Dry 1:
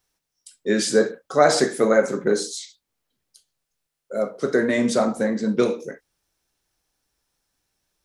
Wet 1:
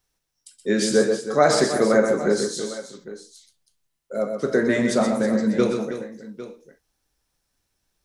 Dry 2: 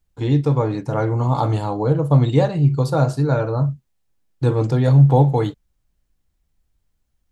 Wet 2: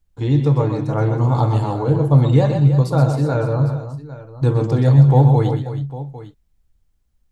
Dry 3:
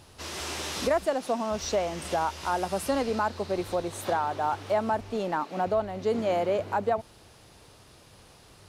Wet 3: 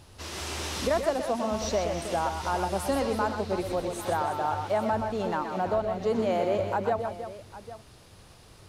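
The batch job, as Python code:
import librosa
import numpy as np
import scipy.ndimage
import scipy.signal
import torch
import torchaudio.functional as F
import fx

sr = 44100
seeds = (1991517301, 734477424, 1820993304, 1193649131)

p1 = fx.low_shelf(x, sr, hz=120.0, db=6.5)
p2 = p1 + fx.echo_multitap(p1, sr, ms=(119, 128, 321, 803), db=(-12.0, -8.0, -11.5, -16.0), dry=0)
y = p2 * 10.0 ** (-1.5 / 20.0)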